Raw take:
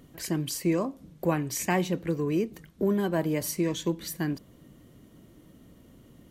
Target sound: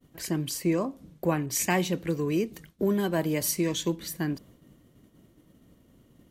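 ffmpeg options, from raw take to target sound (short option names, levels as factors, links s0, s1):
-filter_complex "[0:a]agate=range=0.0224:threshold=0.00398:ratio=3:detection=peak,asettb=1/sr,asplit=3[s0][s1][s2];[s0]atrim=end=1.464[s3];[s1]atrim=start=1.46:end=3.96,asetpts=PTS-STARTPTS,afade=t=in:d=0.004:c=qsin,afade=t=out:st=2.496:d=0.004:c=qsin,adynamicequalizer=threshold=0.00501:dfrequency=2100:dqfactor=0.7:tfrequency=2100:tqfactor=0.7:attack=5:release=100:ratio=0.375:range=2.5:mode=boostabove:tftype=highshelf[s4];[s2]atrim=start=3.956[s5];[s3][s4]acrossfade=d=0.004:c1=hsin:c2=qsin[s6];[s6][s5]acrossfade=d=0.004:c1=qsin:c2=hsin"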